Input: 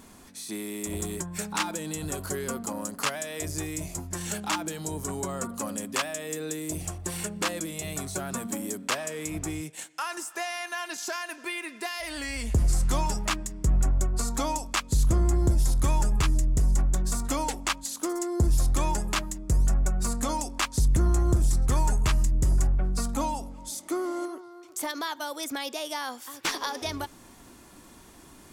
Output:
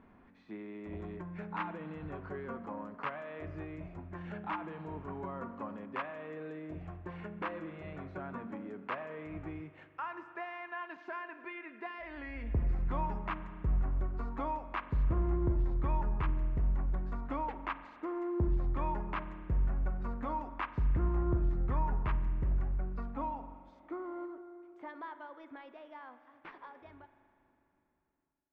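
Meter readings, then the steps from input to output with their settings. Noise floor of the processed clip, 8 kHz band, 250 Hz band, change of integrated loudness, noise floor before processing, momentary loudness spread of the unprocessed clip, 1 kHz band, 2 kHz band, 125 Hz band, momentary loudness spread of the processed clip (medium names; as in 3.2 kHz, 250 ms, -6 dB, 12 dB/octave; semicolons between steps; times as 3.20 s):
-66 dBFS, under -40 dB, -8.0 dB, -8.5 dB, -51 dBFS, 9 LU, -6.5 dB, -10.5 dB, -8.5 dB, 14 LU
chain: fade out at the end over 6.57 s; low-pass 2.2 kHz 24 dB/octave; spring tank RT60 2.6 s, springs 40 ms, chirp 30 ms, DRR 11 dB; dynamic bell 1 kHz, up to +5 dB, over -49 dBFS, Q 4.4; trim -8.5 dB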